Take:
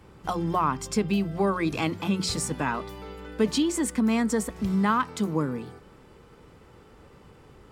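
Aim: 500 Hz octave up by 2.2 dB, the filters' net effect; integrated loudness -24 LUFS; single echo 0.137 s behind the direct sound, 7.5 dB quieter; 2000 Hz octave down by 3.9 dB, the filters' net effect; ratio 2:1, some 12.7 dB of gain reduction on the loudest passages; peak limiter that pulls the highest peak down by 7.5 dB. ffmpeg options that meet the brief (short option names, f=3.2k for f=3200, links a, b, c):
-af "equalizer=f=500:t=o:g=3,equalizer=f=2k:t=o:g=-5.5,acompressor=threshold=-42dB:ratio=2,alimiter=level_in=5.5dB:limit=-24dB:level=0:latency=1,volume=-5.5dB,aecho=1:1:137:0.422,volume=14.5dB"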